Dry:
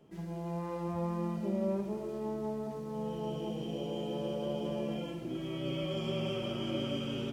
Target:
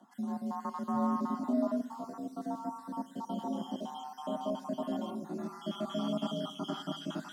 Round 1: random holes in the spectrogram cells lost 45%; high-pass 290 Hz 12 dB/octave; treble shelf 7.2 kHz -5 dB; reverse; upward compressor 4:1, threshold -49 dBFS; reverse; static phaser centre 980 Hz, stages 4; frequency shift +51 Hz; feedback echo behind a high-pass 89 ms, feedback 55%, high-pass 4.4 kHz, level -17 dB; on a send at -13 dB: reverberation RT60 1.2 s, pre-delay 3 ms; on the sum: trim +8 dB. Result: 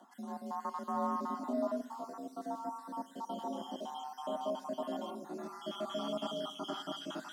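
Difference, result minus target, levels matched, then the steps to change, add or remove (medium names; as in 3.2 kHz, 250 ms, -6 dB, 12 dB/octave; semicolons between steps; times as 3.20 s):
125 Hz band -7.0 dB
change: high-pass 130 Hz 12 dB/octave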